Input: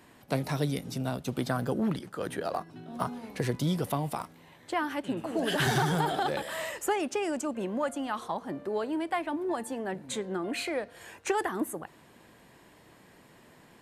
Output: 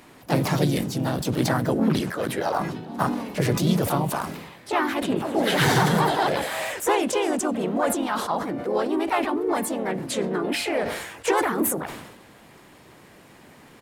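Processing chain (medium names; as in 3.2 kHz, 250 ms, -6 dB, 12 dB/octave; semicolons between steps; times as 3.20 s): harmony voices -3 st -8 dB, +3 st -6 dB, +4 st -6 dB; decay stretcher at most 52 dB/s; trim +4.5 dB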